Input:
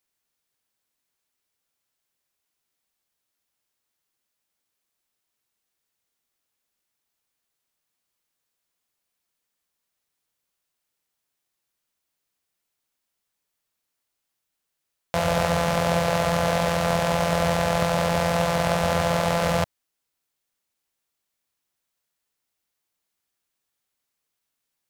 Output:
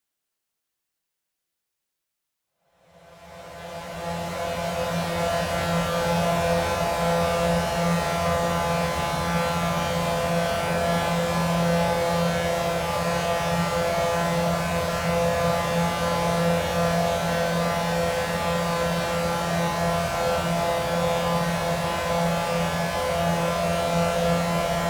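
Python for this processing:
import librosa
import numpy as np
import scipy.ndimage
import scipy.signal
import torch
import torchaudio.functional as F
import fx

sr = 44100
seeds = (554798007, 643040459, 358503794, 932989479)

y = fx.paulstretch(x, sr, seeds[0], factor=8.8, window_s=0.5, from_s=14.61)
y = y * 10.0 ** (-1.5 / 20.0)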